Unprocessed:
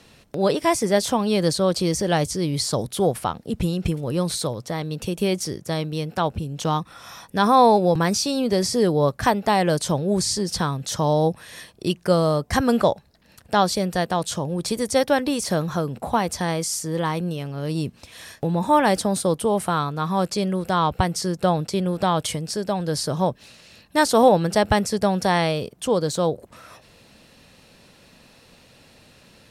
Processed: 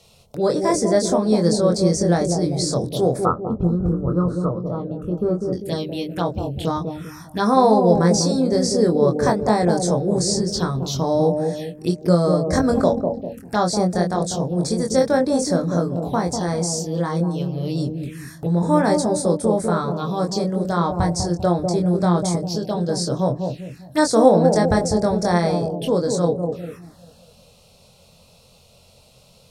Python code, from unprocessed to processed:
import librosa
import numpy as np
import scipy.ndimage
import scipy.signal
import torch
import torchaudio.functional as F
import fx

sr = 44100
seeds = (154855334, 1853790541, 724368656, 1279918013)

y = fx.peak_eq(x, sr, hz=900.0, db=-4.5, octaves=0.78)
y = fx.hum_notches(y, sr, base_hz=50, count=3)
y = fx.doubler(y, sr, ms=23.0, db=-4.0)
y = fx.echo_bbd(y, sr, ms=198, stages=1024, feedback_pct=48, wet_db=-4.5)
y = fx.env_phaser(y, sr, low_hz=270.0, high_hz=2900.0, full_db=-19.0)
y = fx.curve_eq(y, sr, hz=(880.0, 1300.0, 2100.0), db=(0, 12, -24), at=(3.25, 5.53))
y = y * librosa.db_to_amplitude(1.0)